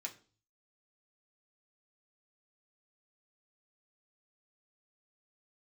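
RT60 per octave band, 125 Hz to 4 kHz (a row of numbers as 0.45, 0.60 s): 0.75, 0.50, 0.45, 0.35, 0.35, 0.40 s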